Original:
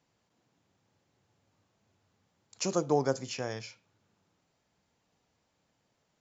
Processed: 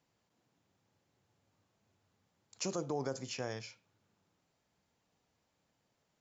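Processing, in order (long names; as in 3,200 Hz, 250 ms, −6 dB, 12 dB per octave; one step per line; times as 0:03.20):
brickwall limiter −22.5 dBFS, peak gain reduction 8.5 dB
level −3.5 dB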